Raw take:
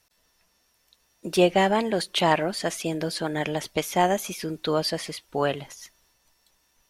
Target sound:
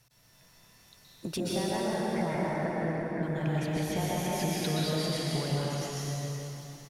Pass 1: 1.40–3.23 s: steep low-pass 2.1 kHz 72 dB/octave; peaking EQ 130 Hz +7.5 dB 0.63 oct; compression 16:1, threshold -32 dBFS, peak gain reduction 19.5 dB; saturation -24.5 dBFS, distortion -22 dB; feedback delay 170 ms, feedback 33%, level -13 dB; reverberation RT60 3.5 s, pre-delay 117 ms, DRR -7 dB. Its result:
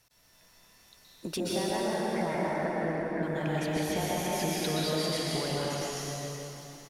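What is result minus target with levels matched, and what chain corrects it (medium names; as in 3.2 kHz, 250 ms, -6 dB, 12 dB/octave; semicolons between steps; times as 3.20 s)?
125 Hz band -4.5 dB
1.40–3.23 s: steep low-pass 2.1 kHz 72 dB/octave; peaking EQ 130 Hz +19.5 dB 0.63 oct; compression 16:1, threshold -32 dBFS, peak gain reduction 21 dB; saturation -24.5 dBFS, distortion -22 dB; feedback delay 170 ms, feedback 33%, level -13 dB; reverberation RT60 3.5 s, pre-delay 117 ms, DRR -7 dB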